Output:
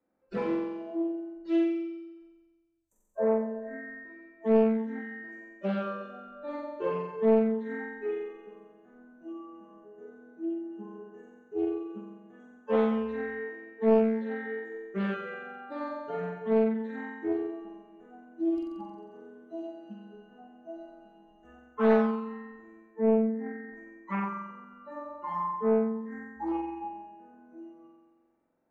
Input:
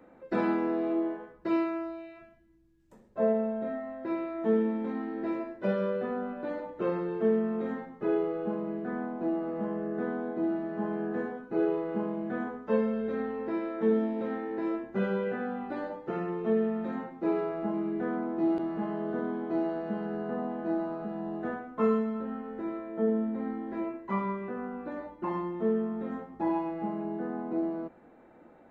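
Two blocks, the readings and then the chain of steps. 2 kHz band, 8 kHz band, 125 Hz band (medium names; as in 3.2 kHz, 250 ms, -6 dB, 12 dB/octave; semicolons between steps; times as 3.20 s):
+1.0 dB, no reading, -2.5 dB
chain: spectral noise reduction 25 dB; flutter echo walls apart 7.7 m, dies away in 1.3 s; loudspeaker Doppler distortion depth 0.4 ms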